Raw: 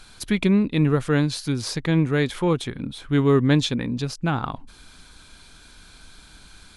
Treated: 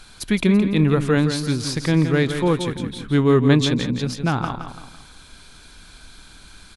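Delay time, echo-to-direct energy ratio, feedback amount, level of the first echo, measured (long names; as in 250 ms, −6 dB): 168 ms, −7.5 dB, 40%, −8.5 dB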